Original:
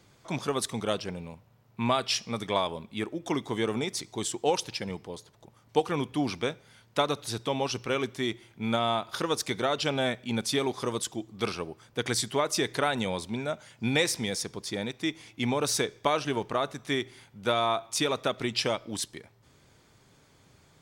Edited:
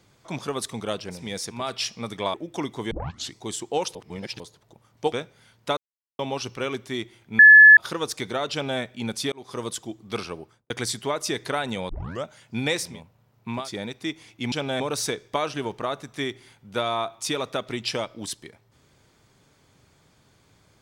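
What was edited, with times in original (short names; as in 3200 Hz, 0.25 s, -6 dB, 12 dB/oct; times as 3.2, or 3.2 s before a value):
1.22–1.91 swap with 14.19–14.58, crossfade 0.24 s
2.64–3.06 cut
3.63 tape start 0.43 s
4.67–5.12 reverse
5.84–6.41 cut
7.06–7.48 mute
8.68–9.06 bleep 1720 Hz -6 dBFS
9.81–10.09 copy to 15.51
10.61–10.91 fade in
11.71–11.99 studio fade out
13.18 tape start 0.35 s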